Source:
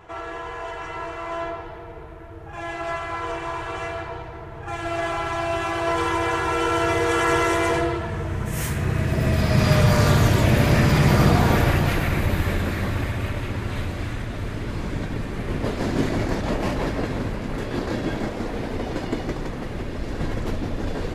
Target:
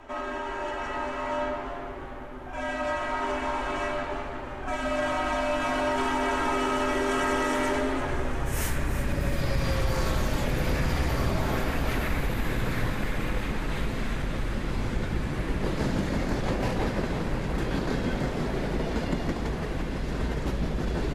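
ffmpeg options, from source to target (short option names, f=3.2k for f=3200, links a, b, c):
-filter_complex "[0:a]acompressor=threshold=-23dB:ratio=6,afreqshift=-77,asplit=7[a][b][c][d][e][f][g];[b]adelay=342,afreqshift=100,volume=-12dB[h];[c]adelay=684,afreqshift=200,volume=-17.2dB[i];[d]adelay=1026,afreqshift=300,volume=-22.4dB[j];[e]adelay=1368,afreqshift=400,volume=-27.6dB[k];[f]adelay=1710,afreqshift=500,volume=-32.8dB[l];[g]adelay=2052,afreqshift=600,volume=-38dB[m];[a][h][i][j][k][l][m]amix=inputs=7:normalize=0"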